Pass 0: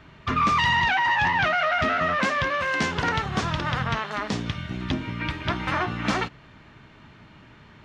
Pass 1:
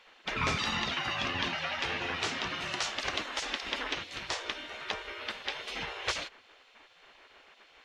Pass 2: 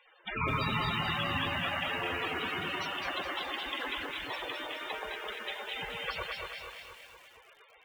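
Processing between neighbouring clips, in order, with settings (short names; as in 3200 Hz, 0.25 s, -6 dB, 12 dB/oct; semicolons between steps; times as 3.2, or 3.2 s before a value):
spectral gate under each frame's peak -15 dB weak
echo with dull and thin repeats by turns 0.118 s, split 1600 Hz, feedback 77%, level -2 dB; loudest bins only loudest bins 32; lo-fi delay 0.211 s, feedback 55%, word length 9-bit, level -5 dB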